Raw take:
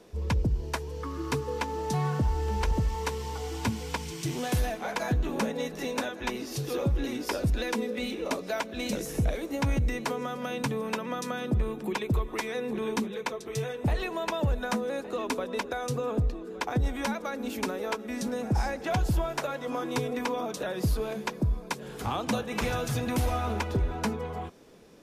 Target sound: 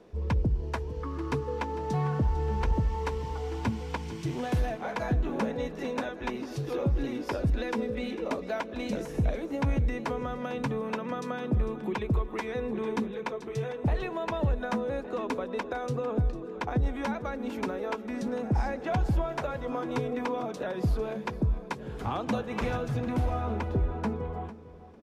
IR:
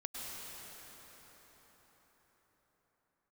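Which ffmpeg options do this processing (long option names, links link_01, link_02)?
-af "asetnsamples=nb_out_samples=441:pad=0,asendcmd='22.77 lowpass f 1000',lowpass=frequency=1800:poles=1,aecho=1:1:450|900:0.168|0.0353"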